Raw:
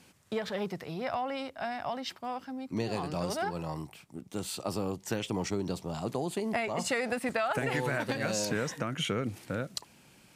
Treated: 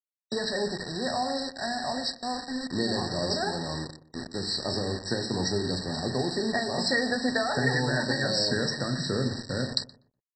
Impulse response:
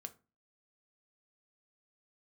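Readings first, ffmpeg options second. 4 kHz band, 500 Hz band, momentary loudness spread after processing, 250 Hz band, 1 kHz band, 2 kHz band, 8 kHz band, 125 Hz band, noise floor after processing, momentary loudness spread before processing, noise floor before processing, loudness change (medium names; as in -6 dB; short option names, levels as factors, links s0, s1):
+10.5 dB, +3.0 dB, 7 LU, +4.5 dB, +2.0 dB, +5.5 dB, +2.0 dB, +5.0 dB, -80 dBFS, 8 LU, -60 dBFS, +5.0 dB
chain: -filter_complex "[1:a]atrim=start_sample=2205,asetrate=23814,aresample=44100[s0];[0:a][s0]afir=irnorm=-1:irlink=0,aresample=16000,acrusher=bits=6:mix=0:aa=0.000001,aresample=44100,highshelf=f=1700:t=q:w=3:g=7.5,asplit=2[s1][s2];[s2]adelay=122,lowpass=f=1000:p=1,volume=0.224,asplit=2[s3][s4];[s4]adelay=122,lowpass=f=1000:p=1,volume=0.3,asplit=2[s5][s6];[s6]adelay=122,lowpass=f=1000:p=1,volume=0.3[s7];[s1][s3][s5][s7]amix=inputs=4:normalize=0,afftfilt=real='re*eq(mod(floor(b*sr/1024/1900),2),0)':imag='im*eq(mod(floor(b*sr/1024/1900),2),0)':win_size=1024:overlap=0.75,volume=1.78"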